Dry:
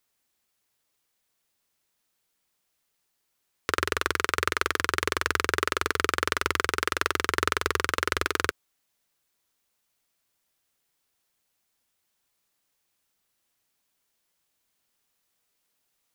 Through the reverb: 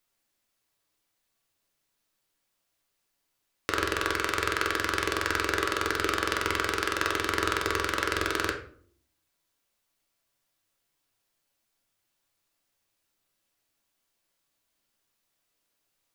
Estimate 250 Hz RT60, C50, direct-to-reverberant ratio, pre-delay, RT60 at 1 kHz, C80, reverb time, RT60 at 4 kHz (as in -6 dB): 0.85 s, 8.5 dB, 1.5 dB, 3 ms, 0.45 s, 13.0 dB, 0.50 s, 0.35 s